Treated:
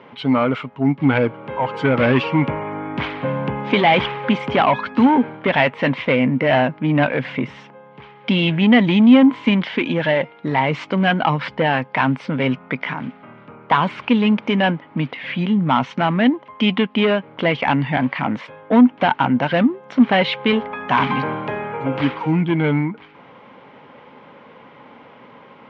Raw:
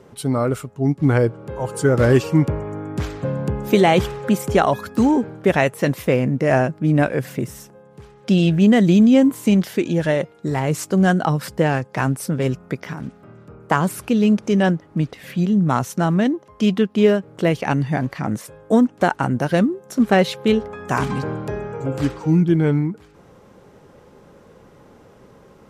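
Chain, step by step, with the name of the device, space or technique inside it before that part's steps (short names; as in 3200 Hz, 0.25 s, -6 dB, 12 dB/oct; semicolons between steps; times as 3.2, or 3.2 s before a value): overdrive pedal into a guitar cabinet (overdrive pedal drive 19 dB, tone 2800 Hz, clips at -1.5 dBFS; speaker cabinet 78–3900 Hz, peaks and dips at 140 Hz +5 dB, 250 Hz +9 dB, 380 Hz -5 dB, 950 Hz +7 dB, 2200 Hz +9 dB, 3100 Hz +7 dB); gain -6 dB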